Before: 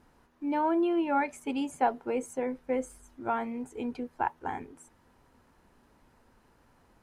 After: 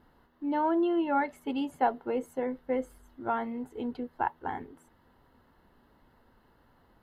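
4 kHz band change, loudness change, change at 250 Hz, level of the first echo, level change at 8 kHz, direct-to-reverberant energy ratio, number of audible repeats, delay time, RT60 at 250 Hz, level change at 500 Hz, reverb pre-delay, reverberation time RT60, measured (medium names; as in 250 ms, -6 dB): 0.0 dB, 0.0 dB, 0.0 dB, no echo, under -10 dB, no reverb, no echo, no echo, no reverb, 0.0 dB, no reverb, no reverb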